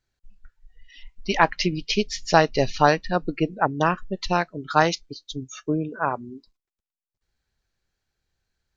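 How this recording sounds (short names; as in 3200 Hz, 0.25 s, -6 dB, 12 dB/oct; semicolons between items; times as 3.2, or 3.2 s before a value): noise floor -93 dBFS; spectral tilt -5.0 dB/oct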